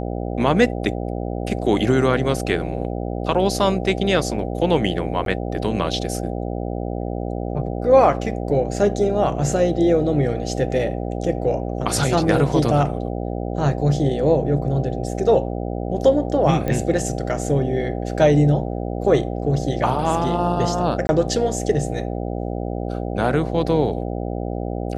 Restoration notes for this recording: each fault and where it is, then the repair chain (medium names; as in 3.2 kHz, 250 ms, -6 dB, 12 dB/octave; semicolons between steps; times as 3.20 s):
buzz 60 Hz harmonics 13 -26 dBFS
5.25–5.26 s: dropout 12 ms
16.68 s: pop -12 dBFS
21.07–21.09 s: dropout 21 ms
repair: de-click; de-hum 60 Hz, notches 13; interpolate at 5.25 s, 12 ms; interpolate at 21.07 s, 21 ms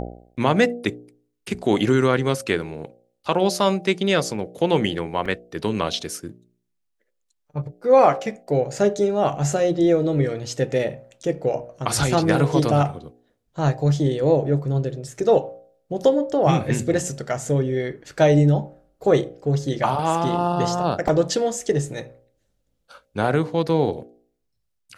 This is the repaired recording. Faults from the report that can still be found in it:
nothing left